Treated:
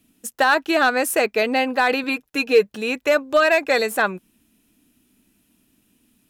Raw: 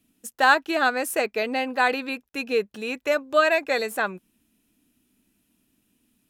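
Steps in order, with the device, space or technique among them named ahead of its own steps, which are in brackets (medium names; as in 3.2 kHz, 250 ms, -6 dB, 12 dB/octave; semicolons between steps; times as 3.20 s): limiter into clipper (peak limiter -13 dBFS, peak gain reduction 7 dB; hard clipper -15 dBFS, distortion -27 dB); 2.03–2.69 s: comb 6.6 ms, depth 48%; trim +6 dB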